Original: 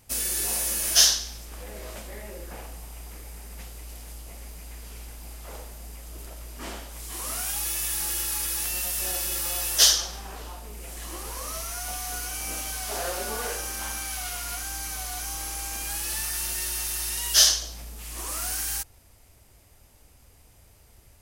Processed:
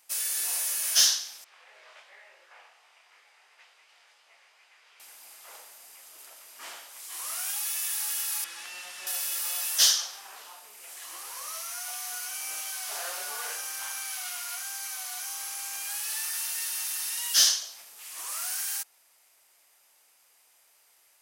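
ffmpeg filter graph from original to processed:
ffmpeg -i in.wav -filter_complex "[0:a]asettb=1/sr,asplit=3[link_01][link_02][link_03];[link_01]atrim=end=1.444[link_04];[link_02]atrim=start=1.44:end=5,asetpts=PTS-STARTPTS,afade=type=in:duration=0.004:curve=qsin,afade=type=out:start_time=3.556:duration=0.004:curve=qsin,flanger=delay=19:depth=4.4:speed=2.8,highpass=440,lowpass=2900,tiltshelf=frequency=1400:gain=-3[link_05];[link_03]atrim=start=4.996[link_06];[link_04][link_05]acrossfade=duration=0.004:curve1=hsin:curve2=qsin[link_07];[link_07][link_06]acrossfade=duration=0.004:curve1=qsin:curve2=hsin,asettb=1/sr,asplit=3[link_08][link_09][link_10];[link_08]atrim=end=8.444[link_11];[link_09]atrim=start=8.44:end=9.07,asetpts=PTS-STARTPTS,afade=type=in:duration=0.004:curve=qsin,afade=type=out:start_time=0.626:duration=0.004:curve=qsin,highpass=150,lowpass=7800,bass=frequency=250:gain=13,treble=frequency=4000:gain=-9[link_12];[link_10]atrim=start=9.066[link_13];[link_11][link_12]acrossfade=duration=0.004:curve1=hsin:curve2=qsin[link_14];[link_14][link_13]acrossfade=duration=0.004:curve1=qsin:curve2=hsin,highpass=960,acontrast=66,volume=-8.5dB" out.wav

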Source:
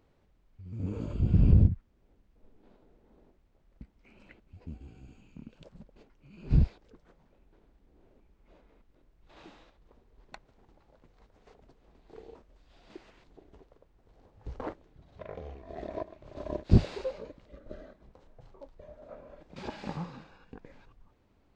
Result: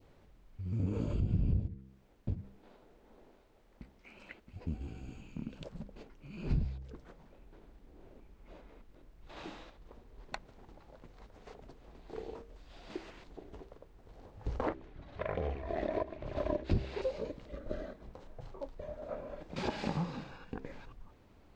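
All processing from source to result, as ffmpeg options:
ffmpeg -i in.wav -filter_complex "[0:a]asettb=1/sr,asplit=3[link_01][link_02][link_03];[link_01]atrim=end=1.604[link_04];[link_02]atrim=start=1.6:end=4.56,asetpts=PTS-STARTPTS,afade=type=in:duration=0.004:curve=qsin,afade=type=out:start_time=2.956:duration=0.004:curve=qsin,lowshelf=frequency=360:gain=-10,aecho=1:1:672:0.422,atrim=end_sample=130536[link_05];[link_03]atrim=start=4.556[link_06];[link_04][link_05]acrossfade=duration=0.004:curve1=hsin:curve2=qsin[link_07];[link_07][link_06]acrossfade=duration=0.004:curve1=qsin:curve2=hsin,asettb=1/sr,asplit=3[link_08][link_09][link_10];[link_08]atrim=end=14.684[link_11];[link_09]atrim=start=14.68:end=17.02,asetpts=PTS-STARTPTS,afade=type=in:duration=0.004:curve=qsin,afade=type=out:start_time=2.336:duration=0.004:curve=qsin,lowpass=frequency=3600:poles=1,equalizer=frequency=1900:width_type=o:width=2:gain=6,aphaser=in_gain=1:out_gain=1:delay=3.6:decay=0.32:speed=1.3:type=sinusoidal[link_12];[link_10]atrim=start=17.016[link_13];[link_11][link_12]acrossfade=duration=0.004:curve1=hsin:curve2=qsin[link_14];[link_14][link_13]acrossfade=duration=0.004:curve1=qsin:curve2=hsin,bandreject=frequency=65.8:width_type=h:width=4,bandreject=frequency=131.6:width_type=h:width=4,bandreject=frequency=197.4:width_type=h:width=4,bandreject=frequency=263.2:width_type=h:width=4,bandreject=frequency=329:width_type=h:width=4,bandreject=frequency=394.8:width_type=h:width=4,bandreject=frequency=460.6:width_type=h:width=4,adynamicequalizer=threshold=0.00158:dfrequency=1300:dqfactor=1.2:tfrequency=1300:tqfactor=1.2:attack=5:release=100:ratio=0.375:range=2.5:mode=cutabove:tftype=bell,acompressor=threshold=-37dB:ratio=4,volume=6.5dB" out.wav

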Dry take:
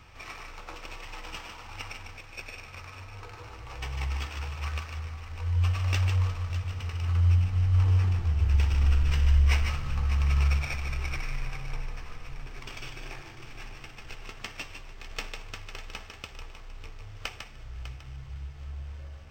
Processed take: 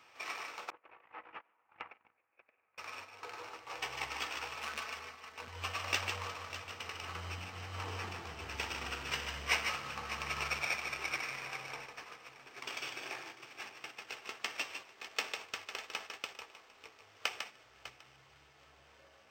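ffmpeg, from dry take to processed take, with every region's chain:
ffmpeg -i in.wav -filter_complex "[0:a]asettb=1/sr,asplit=3[link_01][link_02][link_03];[link_01]atrim=end=0.704[link_04];[link_02]atrim=start=0.7:end=2.78,asetpts=PTS-STARTPTS,afade=type=in:duration=0.004:curve=qsin,afade=type=out:start_time=2.076:duration=0.004:curve=qsin,lowpass=frequency=2100:width=0.5412,lowpass=frequency=2100:width=1.3066,agate=range=-23dB:threshold=-41dB:ratio=16:release=100:detection=peak[link_05];[link_03]atrim=start=2.776[link_06];[link_04][link_05]acrossfade=duration=0.004:curve1=hsin:curve2=qsin[link_07];[link_07][link_06]acrossfade=duration=0.004:curve1=qsin:curve2=hsin,asettb=1/sr,asplit=3[link_08][link_09][link_10];[link_08]atrim=end=4.574[link_11];[link_09]atrim=start=4.57:end=5.48,asetpts=PTS-STARTPTS,afade=type=in:duration=0.004:curve=qsin,afade=type=out:start_time=0.906:duration=0.004:curve=qsin,aecho=1:1:4.6:0.45,atrim=end_sample=40131,asoftclip=type=hard:threshold=-32dB[link_12];[link_10]atrim=start=5.476[link_13];[link_11][link_12]acrossfade=duration=0.004:curve1=hsin:curve2=qsin[link_14];[link_14][link_13]acrossfade=duration=0.004:curve1=qsin:curve2=hsin,highpass=390,agate=range=-6dB:threshold=-48dB:ratio=16:detection=peak,volume=1dB" out.wav

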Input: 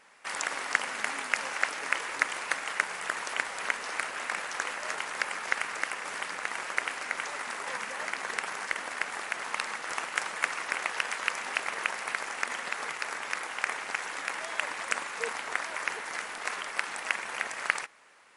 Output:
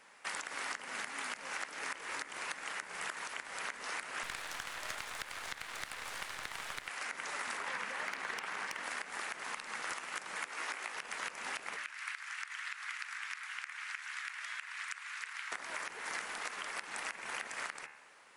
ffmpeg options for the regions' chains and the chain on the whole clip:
ffmpeg -i in.wav -filter_complex "[0:a]asettb=1/sr,asplit=3[link_01][link_02][link_03];[link_01]atrim=end=4.234[link_04];[link_02]atrim=start=4.23:end=6.88,asetpts=PTS-STARTPTS,afade=type=in:duration=0.004:curve=qsin,afade=type=out:start_time=2.646:duration=0.004:curve=qsin,highpass=frequency=270:width=0.5412,highpass=frequency=270:width=1.3066,aeval=exprs='max(val(0),0)':channel_layout=same[link_05];[link_03]atrim=start=6.876[link_06];[link_04][link_05]acrossfade=duration=0.004:curve1=hsin:curve2=qsin[link_07];[link_07][link_06]acrossfade=duration=0.004:curve1=qsin:curve2=hsin,asettb=1/sr,asplit=3[link_08][link_09][link_10];[link_08]atrim=end=7.574[link_11];[link_09]atrim=start=7.57:end=8.83,asetpts=PTS-STARTPTS,afade=type=in:duration=0.004:curve=qsin,afade=type=out:start_time=1.256:duration=0.004:curve=qsin,acrossover=split=4300[link_12][link_13];[link_13]acompressor=threshold=-51dB:ratio=4:attack=1:release=60[link_14];[link_12][link_14]amix=inputs=2:normalize=0,aeval=exprs='0.0794*(abs(mod(val(0)/0.0794+3,4)-2)-1)':channel_layout=same[link_15];[link_10]atrim=start=8.826[link_16];[link_11][link_15]acrossfade=duration=0.004:curve1=hsin:curve2=qsin[link_17];[link_17][link_16]acrossfade=duration=0.004:curve1=qsin:curve2=hsin,asettb=1/sr,asplit=3[link_18][link_19][link_20];[link_18]atrim=end=10.454[link_21];[link_19]atrim=start=10.45:end=10.95,asetpts=PTS-STARTPTS,afade=type=in:duration=0.004:curve=qsin,afade=type=out:start_time=0.496:duration=0.004:curve=qsin,highpass=290,asplit=2[link_22][link_23];[link_23]adelay=18,volume=-4dB[link_24];[link_22][link_24]amix=inputs=2:normalize=0,atrim=end_sample=22050[link_25];[link_20]atrim=start=10.946[link_26];[link_21][link_25]acrossfade=duration=0.004:curve1=hsin:curve2=qsin[link_27];[link_27][link_26]acrossfade=duration=0.004:curve1=qsin:curve2=hsin,asettb=1/sr,asplit=3[link_28][link_29][link_30];[link_28]atrim=end=11.764[link_31];[link_29]atrim=start=11.76:end=15.52,asetpts=PTS-STARTPTS,afade=type=in:duration=0.004:curve=qsin,afade=type=out:start_time=3.756:duration=0.004:curve=qsin,highpass=frequency=1400:width=0.5412,highpass=frequency=1400:width=1.3066,highshelf=frequency=4600:gain=-9[link_32];[link_30]atrim=start=15.516[link_33];[link_31][link_32]acrossfade=duration=0.004:curve1=hsin:curve2=qsin[link_34];[link_34][link_33]acrossfade=duration=0.004:curve1=qsin:curve2=hsin,bandreject=frequency=72.28:width_type=h:width=4,bandreject=frequency=144.56:width_type=h:width=4,bandreject=frequency=216.84:width_type=h:width=4,bandreject=frequency=289.12:width_type=h:width=4,bandreject=frequency=361.4:width_type=h:width=4,bandreject=frequency=433.68:width_type=h:width=4,bandreject=frequency=505.96:width_type=h:width=4,bandreject=frequency=578.24:width_type=h:width=4,bandreject=frequency=650.52:width_type=h:width=4,bandreject=frequency=722.8:width_type=h:width=4,bandreject=frequency=795.08:width_type=h:width=4,bandreject=frequency=867.36:width_type=h:width=4,bandreject=frequency=939.64:width_type=h:width=4,bandreject=frequency=1011.92:width_type=h:width=4,bandreject=frequency=1084.2:width_type=h:width=4,bandreject=frequency=1156.48:width_type=h:width=4,bandreject=frequency=1228.76:width_type=h:width=4,bandreject=frequency=1301.04:width_type=h:width=4,bandreject=frequency=1373.32:width_type=h:width=4,bandreject=frequency=1445.6:width_type=h:width=4,bandreject=frequency=1517.88:width_type=h:width=4,bandreject=frequency=1590.16:width_type=h:width=4,bandreject=frequency=1662.44:width_type=h:width=4,bandreject=frequency=1734.72:width_type=h:width=4,bandreject=frequency=1807:width_type=h:width=4,bandreject=frequency=1879.28:width_type=h:width=4,bandreject=frequency=1951.56:width_type=h:width=4,bandreject=frequency=2023.84:width_type=h:width=4,bandreject=frequency=2096.12:width_type=h:width=4,bandreject=frequency=2168.4:width_type=h:width=4,bandreject=frequency=2240.68:width_type=h:width=4,bandreject=frequency=2312.96:width_type=h:width=4,bandreject=frequency=2385.24:width_type=h:width=4,bandreject=frequency=2457.52:width_type=h:width=4,bandreject=frequency=2529.8:width_type=h:width=4,bandreject=frequency=2602.08:width_type=h:width=4,bandreject=frequency=2674.36:width_type=h:width=4,bandreject=frequency=2746.64:width_type=h:width=4,bandreject=frequency=2818.92:width_type=h:width=4,acrossover=split=410|890[link_35][link_36][link_37];[link_35]acompressor=threshold=-53dB:ratio=4[link_38];[link_36]acompressor=threshold=-52dB:ratio=4[link_39];[link_37]acompressor=threshold=-34dB:ratio=4[link_40];[link_38][link_39][link_40]amix=inputs=3:normalize=0,alimiter=limit=-23.5dB:level=0:latency=1:release=186,volume=-1dB" out.wav

